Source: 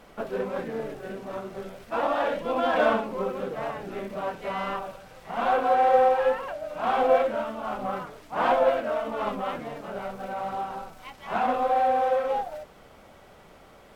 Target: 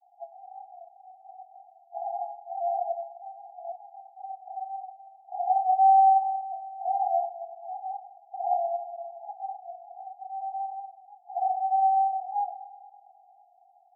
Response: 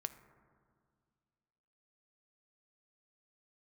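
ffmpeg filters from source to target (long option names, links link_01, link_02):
-filter_complex "[0:a]asuperpass=centerf=750:order=20:qfactor=4.9,asettb=1/sr,asplit=3[link_01][link_02][link_03];[link_01]atrim=end=4.054[link_04];[link_02]atrim=start=4.05:end=6.81,asetpts=PTS-STARTPTS,afade=type=in:duration=0.004:curve=qsin,afade=type=out:start_time=2.756:duration=0.004:curve=qsin,asplit=2[link_05][link_06];[link_06]adelay=27,volume=-3.5dB[link_07];[link_05][link_07]amix=inputs=2:normalize=0,atrim=end_sample=121716[link_08];[link_03]atrim=start=6.806[link_09];[link_04][link_08]acrossfade=duration=0.004:curve1=hsin:curve2=qsin[link_10];[link_10][link_09]acrossfade=duration=0.004:curve1=qsin:curve2=hsin[link_11];[1:a]atrim=start_sample=2205[link_12];[link_11][link_12]afir=irnorm=-1:irlink=0,volume=2.5dB"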